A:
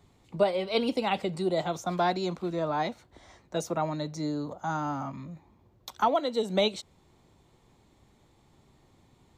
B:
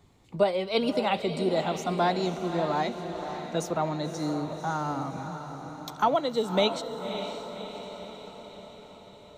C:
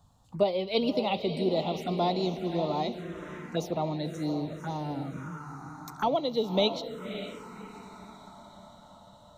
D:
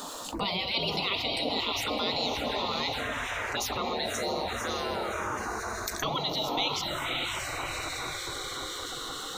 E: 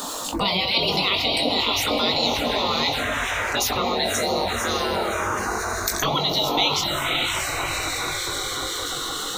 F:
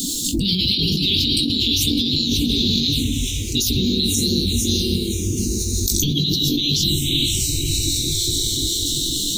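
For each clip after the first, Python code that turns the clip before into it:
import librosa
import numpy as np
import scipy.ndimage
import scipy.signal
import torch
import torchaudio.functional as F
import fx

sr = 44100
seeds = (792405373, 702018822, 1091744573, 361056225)

y1 = fx.echo_diffused(x, sr, ms=566, feedback_pct=59, wet_db=-8.5)
y1 = y1 * librosa.db_to_amplitude(1.0)
y2 = fx.env_phaser(y1, sr, low_hz=360.0, high_hz=1600.0, full_db=-25.0)
y3 = fx.spec_gate(y2, sr, threshold_db=-15, keep='weak')
y3 = fx.env_flatten(y3, sr, amount_pct=70)
y3 = y3 * librosa.db_to_amplitude(3.5)
y4 = fx.high_shelf(y3, sr, hz=6900.0, db=5.0)
y4 = fx.doubler(y4, sr, ms=21.0, db=-7)
y4 = y4 * librosa.db_to_amplitude(7.0)
y5 = scipy.signal.sosfilt(scipy.signal.cheby2(4, 50, [610.0, 1800.0], 'bandstop', fs=sr, output='sos'), y4)
y5 = fx.low_shelf(y5, sr, hz=400.0, db=5.5)
y5 = fx.over_compress(y5, sr, threshold_db=-26.0, ratio=-1.0)
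y5 = y5 * librosa.db_to_amplitude(7.5)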